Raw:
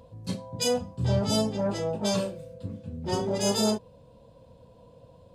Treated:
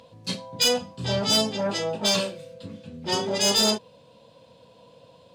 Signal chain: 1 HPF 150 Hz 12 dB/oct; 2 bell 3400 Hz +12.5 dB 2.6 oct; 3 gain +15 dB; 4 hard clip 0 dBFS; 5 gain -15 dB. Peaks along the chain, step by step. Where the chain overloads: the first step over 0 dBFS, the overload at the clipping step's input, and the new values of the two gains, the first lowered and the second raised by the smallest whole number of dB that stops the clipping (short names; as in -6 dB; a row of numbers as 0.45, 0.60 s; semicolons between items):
-13.0, -6.5, +8.5, 0.0, -15.0 dBFS; step 3, 8.5 dB; step 3 +6 dB, step 5 -6 dB